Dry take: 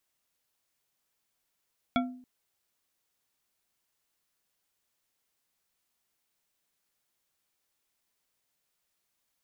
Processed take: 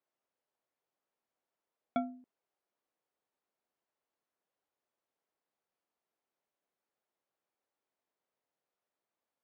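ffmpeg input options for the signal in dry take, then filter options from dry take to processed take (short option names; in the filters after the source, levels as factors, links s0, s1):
-f lavfi -i "aevalsrc='0.0708*pow(10,-3*t/0.56)*sin(2*PI*252*t)+0.0562*pow(10,-3*t/0.275)*sin(2*PI*694.8*t)+0.0447*pow(10,-3*t/0.172)*sin(2*PI*1361.8*t)+0.0355*pow(10,-3*t/0.121)*sin(2*PI*2251.1*t)+0.0282*pow(10,-3*t/0.091)*sin(2*PI*3361.7*t)':d=0.28:s=44100"
-af "bandpass=f=540:t=q:w=0.86:csg=0"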